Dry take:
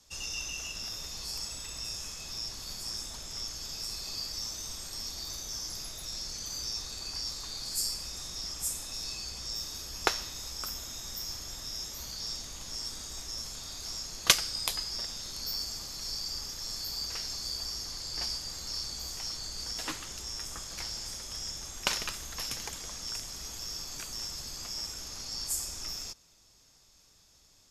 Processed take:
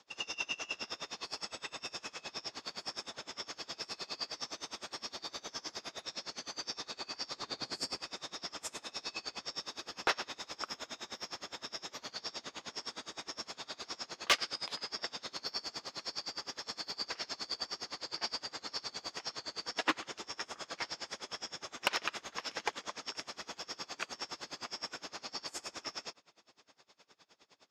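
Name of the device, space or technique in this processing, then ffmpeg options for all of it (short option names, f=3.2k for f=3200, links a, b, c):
helicopter radio: -filter_complex "[0:a]highpass=320,lowpass=2.8k,aeval=exprs='val(0)*pow(10,-26*(0.5-0.5*cos(2*PI*9.7*n/s))/20)':c=same,asoftclip=type=hard:threshold=-30.5dB,asettb=1/sr,asplit=3[a][b][c];[a]atrim=end=7.364[d];[b]atrim=start=7.36:end=7.98,asetpts=PTS-STARTPTS,afade=t=in:d=0.004:c=qsin,afade=t=out:st=0.616:d=0.004:c=qsin,lowshelf=f=450:g=8.5[e];[c]atrim=start=7.976[f];[d][e]acrossfade=d=0.004:c1=hsin:c2=qsin[g];[g][f]acrossfade=d=0.004:c1=qsin:c2=hsin,volume=11.5dB"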